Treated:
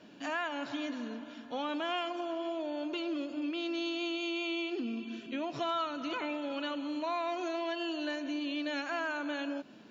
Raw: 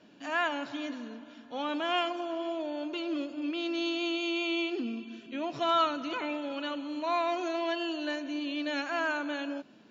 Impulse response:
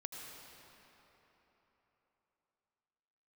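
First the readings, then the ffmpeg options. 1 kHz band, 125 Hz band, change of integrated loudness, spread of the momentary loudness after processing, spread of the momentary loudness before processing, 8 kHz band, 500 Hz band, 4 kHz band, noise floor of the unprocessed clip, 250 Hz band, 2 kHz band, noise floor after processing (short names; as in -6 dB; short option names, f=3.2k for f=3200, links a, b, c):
-4.5 dB, 0.0 dB, -3.5 dB, 4 LU, 8 LU, n/a, -3.0 dB, -3.5 dB, -54 dBFS, -2.0 dB, -3.5 dB, -51 dBFS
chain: -af "acompressor=threshold=-37dB:ratio=3,volume=3dB"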